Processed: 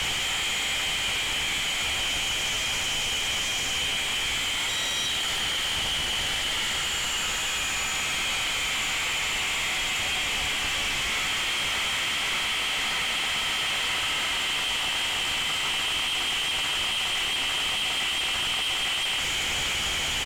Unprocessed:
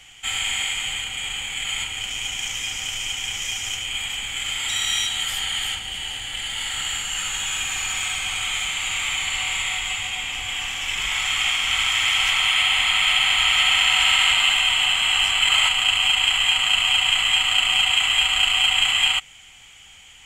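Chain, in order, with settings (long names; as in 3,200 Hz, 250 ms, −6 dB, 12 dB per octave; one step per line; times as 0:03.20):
sign of each sample alone
high-frequency loss of the air 53 metres
double-tracking delay 14 ms −11 dB
level −3.5 dB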